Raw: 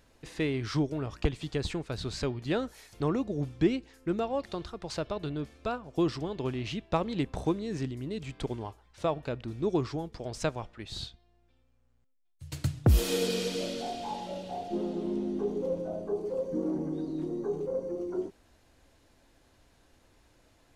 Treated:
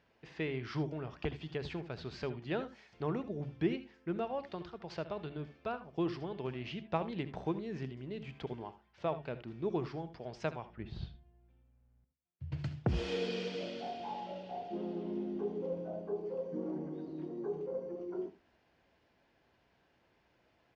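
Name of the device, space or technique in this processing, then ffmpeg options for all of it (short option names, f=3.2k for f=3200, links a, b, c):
guitar cabinet: -filter_complex "[0:a]asplit=3[a][b][c];[a]afade=t=out:st=10.68:d=0.02[d];[b]aemphasis=mode=reproduction:type=riaa,afade=t=in:st=10.68:d=0.02,afade=t=out:st=12.57:d=0.02[e];[c]afade=t=in:st=12.57:d=0.02[f];[d][e][f]amix=inputs=3:normalize=0,highpass=96,equalizer=f=100:t=q:w=4:g=-9,equalizer=f=280:t=q:w=4:g=-7,equalizer=f=520:t=q:w=4:g=-3,equalizer=f=1.2k:t=q:w=4:g=-3,equalizer=f=3.9k:t=q:w=4:g=-8,lowpass=f=4.4k:w=0.5412,lowpass=f=4.4k:w=1.3066,aecho=1:1:68|80:0.15|0.15,bandreject=f=71.33:t=h:w=4,bandreject=f=142.66:t=h:w=4,bandreject=f=213.99:t=h:w=4,bandreject=f=285.32:t=h:w=4,bandreject=f=356.65:t=h:w=4,volume=-4dB"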